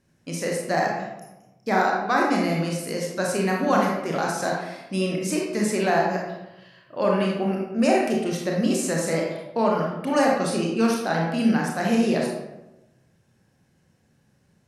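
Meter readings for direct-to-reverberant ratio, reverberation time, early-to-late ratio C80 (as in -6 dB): -2.0 dB, 0.95 s, 4.5 dB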